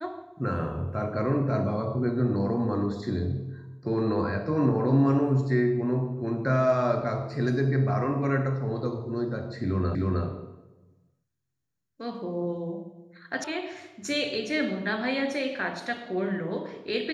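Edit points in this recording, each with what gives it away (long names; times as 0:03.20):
0:09.95: the same again, the last 0.31 s
0:13.44: cut off before it has died away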